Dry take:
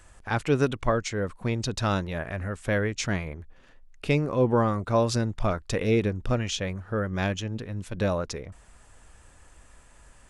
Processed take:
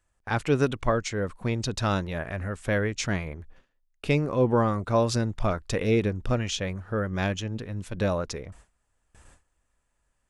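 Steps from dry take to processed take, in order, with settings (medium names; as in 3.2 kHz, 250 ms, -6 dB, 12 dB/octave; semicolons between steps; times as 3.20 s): gate with hold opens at -41 dBFS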